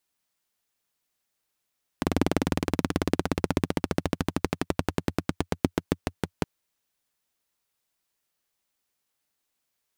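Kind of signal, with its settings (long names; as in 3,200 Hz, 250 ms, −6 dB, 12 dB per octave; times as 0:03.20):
pulse-train model of a single-cylinder engine, changing speed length 4.42 s, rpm 2,500, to 600, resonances 89/170/260 Hz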